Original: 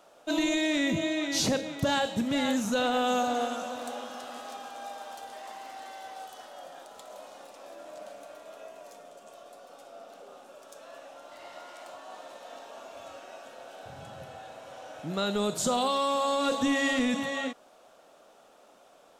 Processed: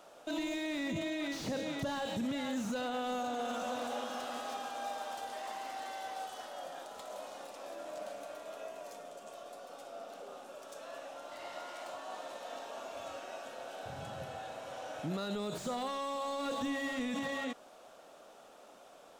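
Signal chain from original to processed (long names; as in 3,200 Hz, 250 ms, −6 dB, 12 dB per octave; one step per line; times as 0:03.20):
brickwall limiter −29.5 dBFS, peak gain reduction 11 dB
slew-rate limiting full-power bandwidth 26 Hz
level +1 dB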